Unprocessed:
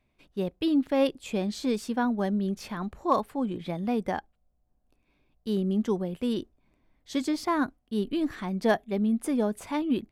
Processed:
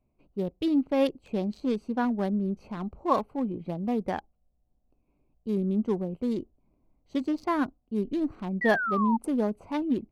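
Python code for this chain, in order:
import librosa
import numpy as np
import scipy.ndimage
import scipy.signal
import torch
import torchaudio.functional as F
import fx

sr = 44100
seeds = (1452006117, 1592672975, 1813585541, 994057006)

y = fx.wiener(x, sr, points=25)
y = fx.spec_paint(y, sr, seeds[0], shape='fall', start_s=8.61, length_s=0.56, low_hz=870.0, high_hz=2000.0, level_db=-29.0)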